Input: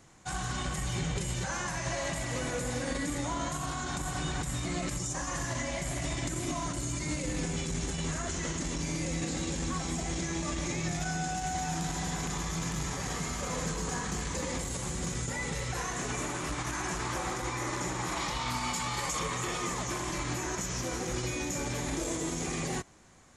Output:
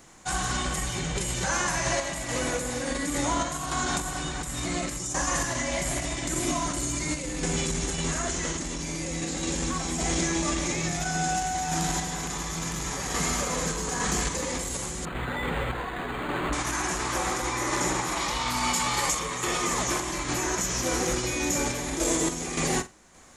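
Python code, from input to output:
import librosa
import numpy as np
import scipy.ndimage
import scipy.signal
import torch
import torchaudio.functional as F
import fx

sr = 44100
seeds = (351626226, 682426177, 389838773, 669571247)

p1 = fx.peak_eq(x, sr, hz=110.0, db=-8.0, octaves=1.2)
p2 = fx.tremolo_random(p1, sr, seeds[0], hz=3.5, depth_pct=55)
p3 = fx.high_shelf(p2, sr, hz=11000.0, db=7.0)
p4 = p3 + fx.room_flutter(p3, sr, wall_m=8.3, rt60_s=0.21, dry=0)
p5 = fx.resample_linear(p4, sr, factor=8, at=(15.05, 16.53))
y = F.gain(torch.from_numpy(p5), 8.5).numpy()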